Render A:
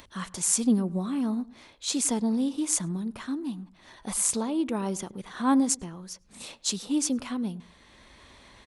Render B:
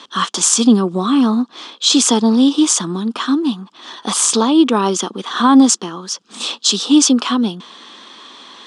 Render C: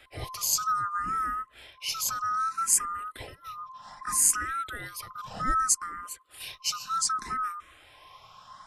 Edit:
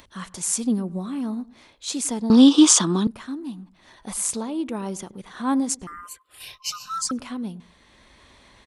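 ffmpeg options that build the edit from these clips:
ffmpeg -i take0.wav -i take1.wav -i take2.wav -filter_complex "[0:a]asplit=3[link_01][link_02][link_03];[link_01]atrim=end=2.302[link_04];[1:a]atrim=start=2.298:end=3.072[link_05];[link_02]atrim=start=3.068:end=5.872[link_06];[2:a]atrim=start=5.868:end=7.112[link_07];[link_03]atrim=start=7.108[link_08];[link_04][link_05]acrossfade=duration=0.004:curve1=hsin:curve2=hsin[link_09];[link_09][link_06]acrossfade=duration=0.004:curve1=hsin:curve2=hsin[link_10];[link_10][link_07]acrossfade=duration=0.004:curve1=hsin:curve2=hsin[link_11];[link_11][link_08]acrossfade=duration=0.004:curve1=hsin:curve2=hsin" out.wav

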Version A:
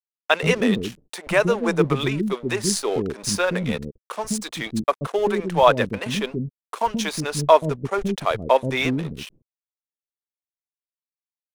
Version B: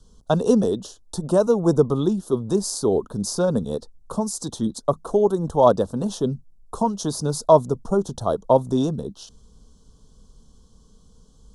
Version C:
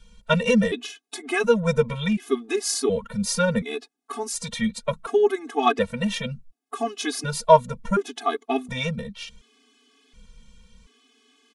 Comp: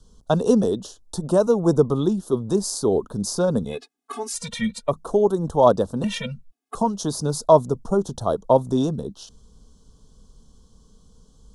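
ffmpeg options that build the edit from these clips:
ffmpeg -i take0.wav -i take1.wav -i take2.wav -filter_complex "[2:a]asplit=2[link_01][link_02];[1:a]asplit=3[link_03][link_04][link_05];[link_03]atrim=end=3.82[link_06];[link_01]atrim=start=3.66:end=4.94[link_07];[link_04]atrim=start=4.78:end=6.042[link_08];[link_02]atrim=start=6.038:end=6.752[link_09];[link_05]atrim=start=6.748[link_10];[link_06][link_07]acrossfade=duration=0.16:curve1=tri:curve2=tri[link_11];[link_11][link_08]acrossfade=duration=0.16:curve1=tri:curve2=tri[link_12];[link_12][link_09]acrossfade=duration=0.004:curve1=hsin:curve2=hsin[link_13];[link_13][link_10]acrossfade=duration=0.004:curve1=hsin:curve2=hsin" out.wav

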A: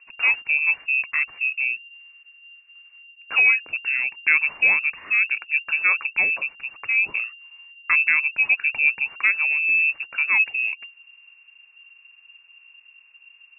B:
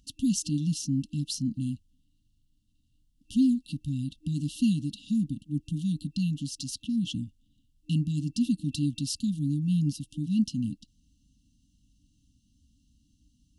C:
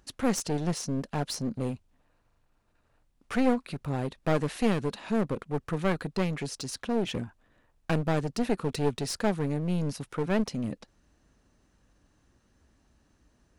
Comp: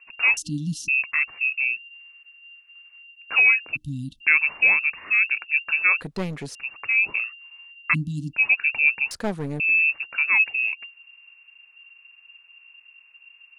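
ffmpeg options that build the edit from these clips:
ffmpeg -i take0.wav -i take1.wav -i take2.wav -filter_complex "[1:a]asplit=3[link_01][link_02][link_03];[2:a]asplit=2[link_04][link_05];[0:a]asplit=6[link_06][link_07][link_08][link_09][link_10][link_11];[link_06]atrim=end=0.372[link_12];[link_01]atrim=start=0.368:end=0.882[link_13];[link_07]atrim=start=0.878:end=3.77[link_14];[link_02]atrim=start=3.75:end=4.22[link_15];[link_08]atrim=start=4.2:end=6.012[link_16];[link_04]atrim=start=6.008:end=6.552[link_17];[link_09]atrim=start=6.548:end=7.95[link_18];[link_03]atrim=start=7.93:end=8.35[link_19];[link_10]atrim=start=8.33:end=9.112[link_20];[link_05]atrim=start=9.108:end=9.602[link_21];[link_11]atrim=start=9.598[link_22];[link_12][link_13]acrossfade=duration=0.004:curve1=hsin:curve2=hsin[link_23];[link_23][link_14]acrossfade=duration=0.004:curve1=hsin:curve2=hsin[link_24];[link_24][link_15]acrossfade=duration=0.02:curve1=tri:curve2=tri[link_25];[link_25][link_16]acrossfade=duration=0.02:curve1=tri:curve2=tri[link_26];[link_26][link_17]acrossfade=duration=0.004:curve1=hsin:curve2=hsin[link_27];[link_27][link_18]acrossfade=duration=0.004:curve1=hsin:curve2=hsin[link_28];[link_28][link_19]acrossfade=duration=0.02:curve1=tri:curve2=tri[link_29];[link_29][link_20]acrossfade=duration=0.02:curve1=tri:curve2=tri[link_30];[link_30][link_21]acrossfade=duration=0.004:curve1=hsin:curve2=hsin[link_31];[link_31][link_22]acrossfade=duration=0.004:curve1=hsin:curve2=hsin" out.wav

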